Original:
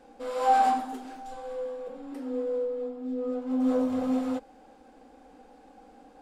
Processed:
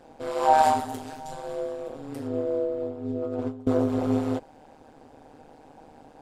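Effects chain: 0.58–2.28 s: treble shelf 4.1 kHz +8 dB; 3.10–3.67 s: compressor with a negative ratio -33 dBFS, ratio -0.5; AM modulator 150 Hz, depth 80%; trim +6.5 dB

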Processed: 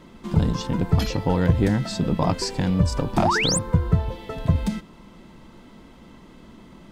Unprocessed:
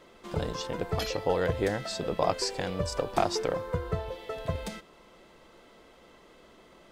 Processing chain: resonant low shelf 330 Hz +11 dB, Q 1.5; painted sound rise, 3.22–3.59 s, 520–9600 Hz -26 dBFS; peaking EQ 930 Hz +6.5 dB 0.24 oct; in parallel at -6 dB: saturation -21 dBFS, distortion -8 dB

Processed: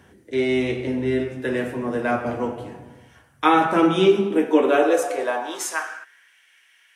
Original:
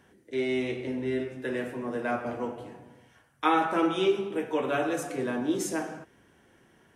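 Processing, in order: high-pass sweep 68 Hz -> 2.3 kHz, 3.26–6.39 s; trim +7 dB

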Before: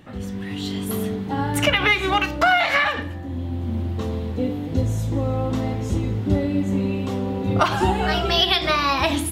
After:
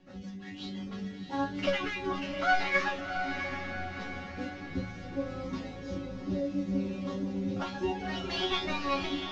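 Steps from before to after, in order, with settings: CVSD coder 32 kbps; reverb removal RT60 0.75 s; rotary cabinet horn 6 Hz, later 0.7 Hz, at 0.97 s; chord resonator F#3 fifth, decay 0.25 s; on a send: echo that smears into a reverb 699 ms, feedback 50%, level -6.5 dB; on the sum: trim +6 dB

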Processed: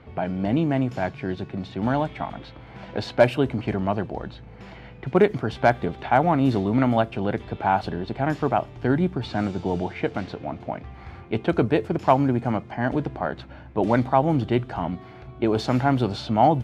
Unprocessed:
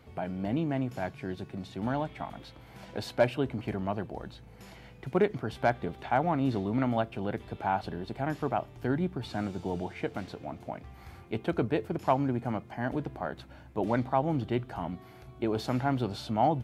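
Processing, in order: level-controlled noise filter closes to 2.8 kHz, open at -22.5 dBFS; trim +8 dB

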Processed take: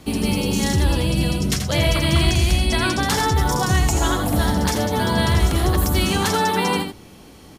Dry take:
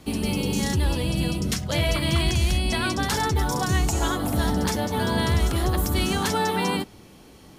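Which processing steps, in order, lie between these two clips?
delay 83 ms -7.5 dB; trim +4 dB

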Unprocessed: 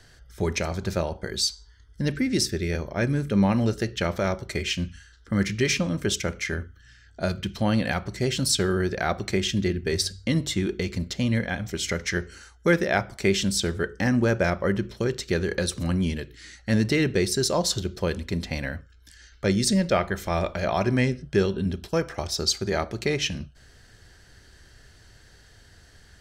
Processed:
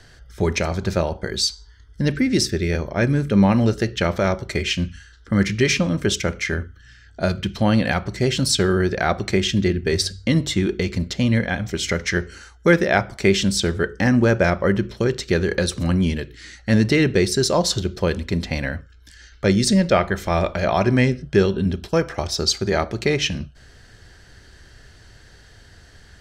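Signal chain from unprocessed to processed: treble shelf 8.9 kHz -8.5 dB; trim +5.5 dB

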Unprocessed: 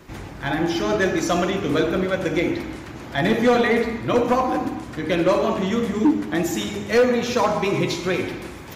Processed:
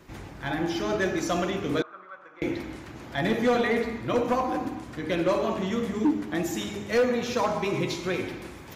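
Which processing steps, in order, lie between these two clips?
1.82–2.42 s: band-pass filter 1.2 kHz, Q 6.9; trim -6 dB

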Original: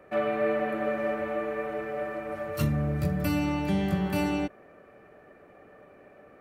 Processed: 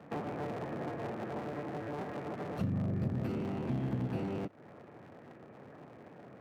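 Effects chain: cycle switcher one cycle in 3, inverted; high-pass 110 Hz 24 dB/octave; compression 6:1, threshold -37 dBFS, peak gain reduction 13.5 dB; RIAA curve playback; trim -2.5 dB

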